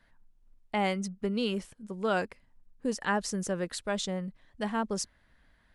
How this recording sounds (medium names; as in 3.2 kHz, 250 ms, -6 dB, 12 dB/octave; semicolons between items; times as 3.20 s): noise floor -66 dBFS; spectral tilt -4.0 dB/octave